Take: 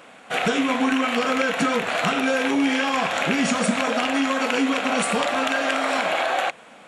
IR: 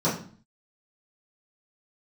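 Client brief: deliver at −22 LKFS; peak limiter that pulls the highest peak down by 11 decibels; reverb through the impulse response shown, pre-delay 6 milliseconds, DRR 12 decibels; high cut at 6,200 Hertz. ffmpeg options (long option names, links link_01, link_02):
-filter_complex "[0:a]lowpass=6200,alimiter=limit=-20dB:level=0:latency=1,asplit=2[link_01][link_02];[1:a]atrim=start_sample=2205,adelay=6[link_03];[link_02][link_03]afir=irnorm=-1:irlink=0,volume=-25.5dB[link_04];[link_01][link_04]amix=inputs=2:normalize=0,volume=5.5dB"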